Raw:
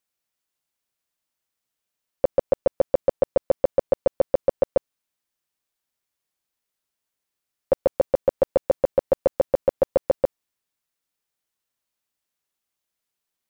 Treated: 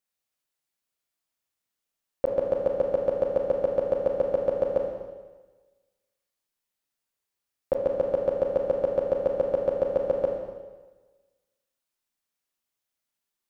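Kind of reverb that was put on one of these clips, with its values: Schroeder reverb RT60 1.3 s, combs from 27 ms, DRR 0.5 dB; gain -5 dB

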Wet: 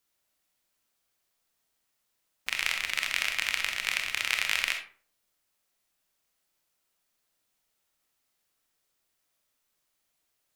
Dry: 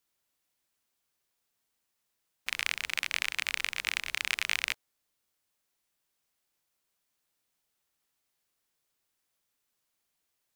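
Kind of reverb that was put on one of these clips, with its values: digital reverb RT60 0.45 s, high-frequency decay 0.6×, pre-delay 5 ms, DRR 3.5 dB; gain +1.5 dB

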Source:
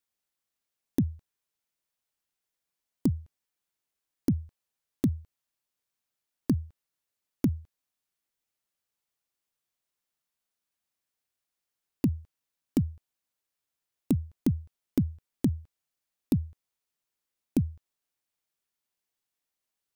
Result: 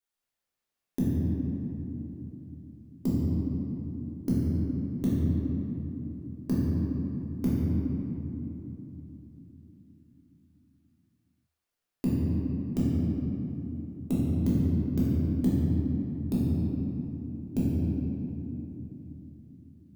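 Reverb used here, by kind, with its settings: shoebox room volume 190 m³, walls hard, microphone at 1.3 m; gain -7 dB

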